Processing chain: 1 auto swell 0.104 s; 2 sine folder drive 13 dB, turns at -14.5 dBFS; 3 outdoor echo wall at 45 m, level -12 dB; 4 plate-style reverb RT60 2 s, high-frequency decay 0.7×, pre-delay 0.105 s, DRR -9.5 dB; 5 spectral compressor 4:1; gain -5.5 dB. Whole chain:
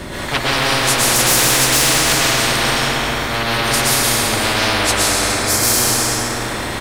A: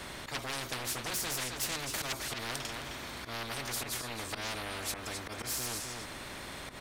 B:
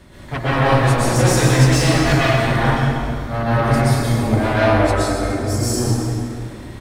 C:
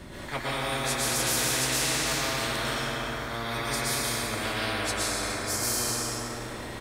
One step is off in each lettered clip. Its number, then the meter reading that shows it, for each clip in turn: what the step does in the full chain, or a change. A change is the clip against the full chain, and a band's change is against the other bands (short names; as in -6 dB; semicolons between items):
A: 4, crest factor change +5.5 dB; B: 5, 8 kHz band -13.0 dB; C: 2, distortion -3 dB